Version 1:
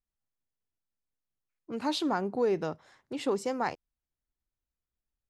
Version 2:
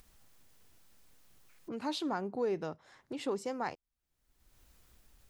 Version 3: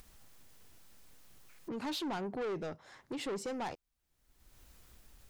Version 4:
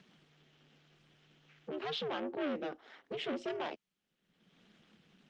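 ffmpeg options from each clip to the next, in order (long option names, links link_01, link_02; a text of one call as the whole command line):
ffmpeg -i in.wav -af "acompressor=mode=upward:threshold=-31dB:ratio=2.5,volume=-5.5dB" out.wav
ffmpeg -i in.wav -af "asoftclip=type=tanh:threshold=-38dB,volume=4dB" out.wav
ffmpeg -i in.wav -af "aeval=exprs='val(0)*sin(2*PI*150*n/s)':channel_layout=same,highpass=frequency=220:width=0.5412,highpass=frequency=220:width=1.3066,equalizer=frequency=580:width_type=q:width=4:gain=-3,equalizer=frequency=1000:width_type=q:width=4:gain=-7,equalizer=frequency=3100:width_type=q:width=4:gain=6,equalizer=frequency=4600:width_type=q:width=4:gain=-6,lowpass=frequency=4800:width=0.5412,lowpass=frequency=4800:width=1.3066,volume=5.5dB" -ar 48000 -c:a libopus -b:a 24k out.opus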